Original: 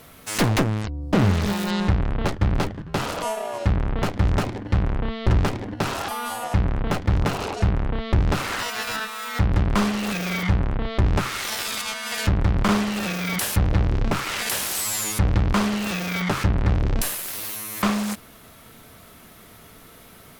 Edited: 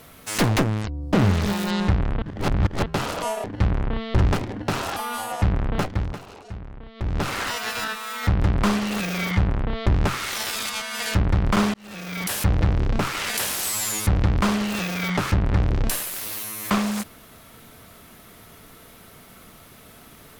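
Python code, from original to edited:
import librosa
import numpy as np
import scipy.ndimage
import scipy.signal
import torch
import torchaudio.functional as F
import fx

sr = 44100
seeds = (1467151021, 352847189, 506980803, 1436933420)

y = fx.edit(x, sr, fx.reverse_span(start_s=2.22, length_s=0.64),
    fx.cut(start_s=3.44, length_s=1.12),
    fx.fade_down_up(start_s=6.92, length_s=1.53, db=-15.0, fade_s=0.39),
    fx.fade_in_span(start_s=12.86, length_s=0.69), tone=tone)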